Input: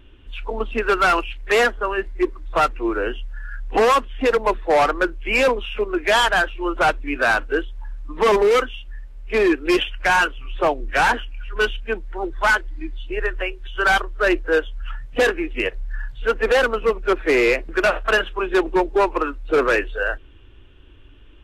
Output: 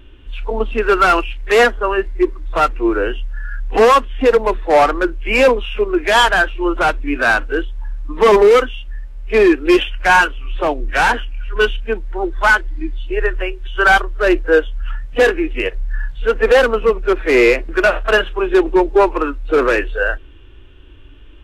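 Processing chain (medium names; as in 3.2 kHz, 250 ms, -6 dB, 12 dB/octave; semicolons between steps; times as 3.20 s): harmonic-percussive split harmonic +7 dB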